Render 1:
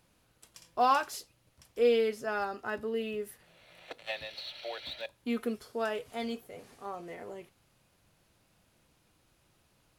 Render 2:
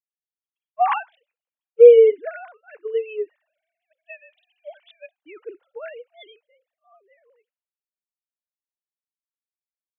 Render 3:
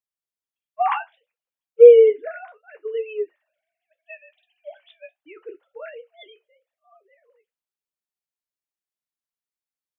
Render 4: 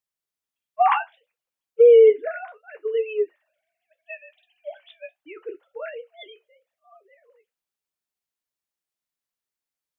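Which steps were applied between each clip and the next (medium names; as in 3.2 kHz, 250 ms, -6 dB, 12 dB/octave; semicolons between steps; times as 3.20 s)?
formants replaced by sine waves; three bands expanded up and down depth 100%; trim +4 dB
flange 0.69 Hz, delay 9.5 ms, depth 5.8 ms, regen -48%; trim +3.5 dB
peak limiter -10 dBFS, peak gain reduction 9 dB; trim +3 dB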